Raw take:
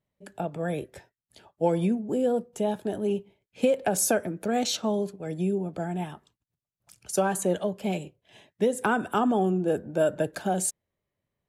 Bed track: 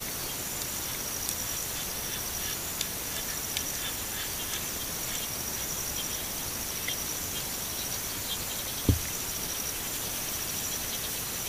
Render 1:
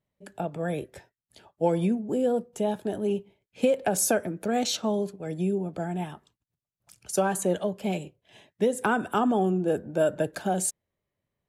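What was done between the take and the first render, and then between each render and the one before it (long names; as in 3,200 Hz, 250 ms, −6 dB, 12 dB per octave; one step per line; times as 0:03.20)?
no processing that can be heard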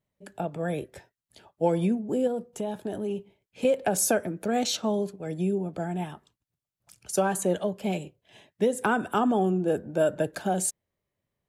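0:02.27–0:03.65: downward compressor 3 to 1, threshold −27 dBFS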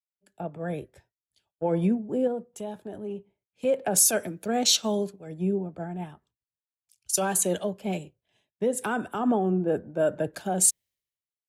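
brickwall limiter −17.5 dBFS, peak gain reduction 7 dB
multiband upward and downward expander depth 100%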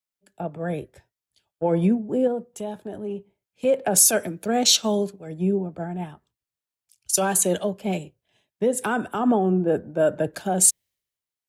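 level +4 dB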